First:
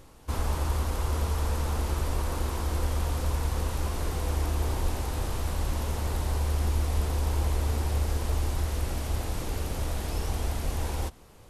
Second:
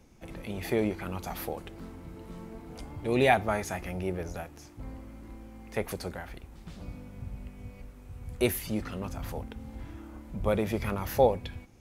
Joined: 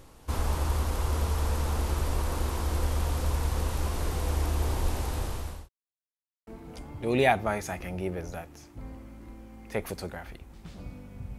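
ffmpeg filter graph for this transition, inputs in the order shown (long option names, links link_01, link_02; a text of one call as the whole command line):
ffmpeg -i cue0.wav -i cue1.wav -filter_complex "[0:a]apad=whole_dur=11.38,atrim=end=11.38,asplit=2[link_01][link_02];[link_01]atrim=end=5.69,asetpts=PTS-STARTPTS,afade=type=out:start_time=4.98:duration=0.71:curve=qsin[link_03];[link_02]atrim=start=5.69:end=6.47,asetpts=PTS-STARTPTS,volume=0[link_04];[1:a]atrim=start=2.49:end=7.4,asetpts=PTS-STARTPTS,afade=type=in:duration=0.004:curve=hsin[link_05];[link_03][link_04][link_05]concat=n=3:v=0:a=1" out.wav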